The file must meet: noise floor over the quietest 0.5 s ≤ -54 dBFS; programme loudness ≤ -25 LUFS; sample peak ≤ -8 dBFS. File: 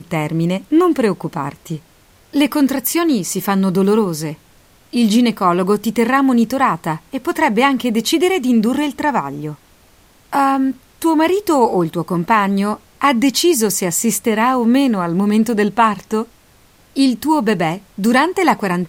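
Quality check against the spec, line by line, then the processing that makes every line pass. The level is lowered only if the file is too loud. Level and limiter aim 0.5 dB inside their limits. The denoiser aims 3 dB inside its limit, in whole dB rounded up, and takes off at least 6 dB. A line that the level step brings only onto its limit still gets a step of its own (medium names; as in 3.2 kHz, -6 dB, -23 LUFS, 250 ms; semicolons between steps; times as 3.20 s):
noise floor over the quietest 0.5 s -50 dBFS: fail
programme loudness -16.0 LUFS: fail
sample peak -2.5 dBFS: fail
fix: trim -9.5 dB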